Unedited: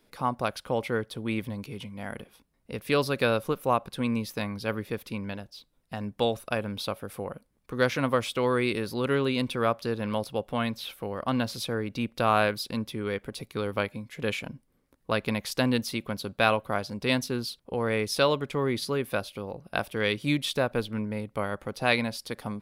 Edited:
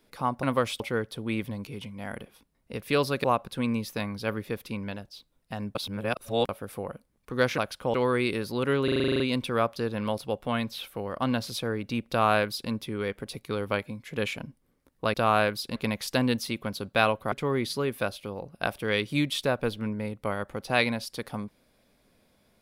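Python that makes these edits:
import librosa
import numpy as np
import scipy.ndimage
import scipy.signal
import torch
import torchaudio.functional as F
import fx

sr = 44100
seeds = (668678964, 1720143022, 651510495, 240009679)

y = fx.edit(x, sr, fx.swap(start_s=0.43, length_s=0.36, other_s=7.99, other_length_s=0.37),
    fx.cut(start_s=3.23, length_s=0.42),
    fx.reverse_span(start_s=6.16, length_s=0.74),
    fx.stutter(start_s=9.26, slice_s=0.04, count=10),
    fx.duplicate(start_s=12.15, length_s=0.62, to_s=15.2),
    fx.cut(start_s=16.76, length_s=1.68), tone=tone)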